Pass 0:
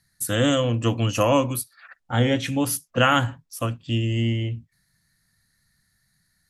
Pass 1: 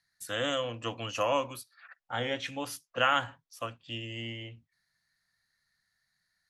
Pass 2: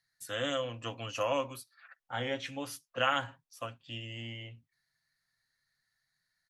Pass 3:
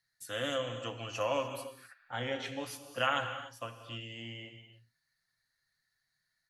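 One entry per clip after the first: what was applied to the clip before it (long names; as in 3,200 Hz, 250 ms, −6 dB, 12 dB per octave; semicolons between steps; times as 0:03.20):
three-way crossover with the lows and the highs turned down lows −14 dB, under 470 Hz, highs −13 dB, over 6,200 Hz; level −6 dB
comb filter 7.5 ms, depth 36%; level −3.5 dB
reverb whose tail is shaped and stops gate 320 ms flat, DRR 7 dB; level −1.5 dB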